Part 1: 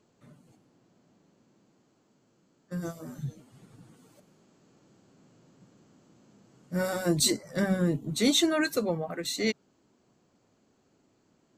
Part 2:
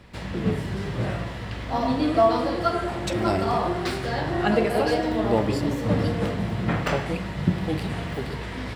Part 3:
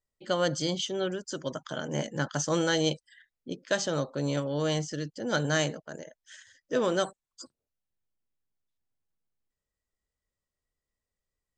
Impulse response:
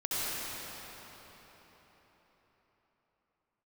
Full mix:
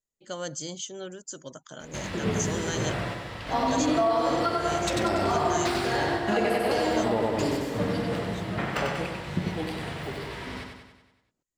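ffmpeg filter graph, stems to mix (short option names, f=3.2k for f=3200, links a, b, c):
-filter_complex "[0:a]aeval=exprs='val(0)*pow(10,-28*if(lt(mod(-2.1*n/s,1),2*abs(-2.1)/1000),1-mod(-2.1*n/s,1)/(2*abs(-2.1)/1000),(mod(-2.1*n/s,1)-2*abs(-2.1)/1000)/(1-2*abs(-2.1)/1000))/20)':c=same,volume=-12.5dB[a];[1:a]lowshelf=f=360:g=-6,adelay=1800,volume=0.5dB,asplit=2[b][c];[c]volume=-3dB[d];[2:a]equalizer=f=6.9k:t=o:w=0.37:g=15,volume=-8dB,asplit=2[e][f];[f]apad=whole_len=465498[g];[b][g]sidechaingate=range=-33dB:threshold=-60dB:ratio=16:detection=peak[h];[d]aecho=0:1:95|190|285|380|475|570|665|760:1|0.56|0.314|0.176|0.0983|0.0551|0.0308|0.0173[i];[a][h][e][i]amix=inputs=4:normalize=0,alimiter=limit=-15dB:level=0:latency=1:release=148"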